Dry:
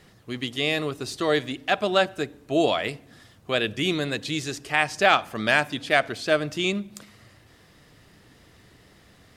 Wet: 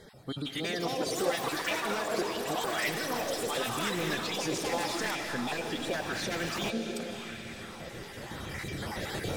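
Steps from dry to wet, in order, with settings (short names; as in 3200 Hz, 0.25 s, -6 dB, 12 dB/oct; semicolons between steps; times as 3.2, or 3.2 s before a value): random spectral dropouts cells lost 30%; recorder AGC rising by 8.5 dB/s; wavefolder -16.5 dBFS; notch 2700 Hz, Q 17; compressor 8:1, threshold -29 dBFS, peak gain reduction 9.5 dB; formant-preserving pitch shift +2 st; diffused feedback echo 0.599 s, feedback 48%, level -11 dB; limiter -27 dBFS, peak gain reduction 8 dB; reverb RT60 2.2 s, pre-delay 0.115 s, DRR 6.5 dB; echoes that change speed 0.45 s, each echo +7 st, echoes 3; LFO bell 0.87 Hz 400–2100 Hz +8 dB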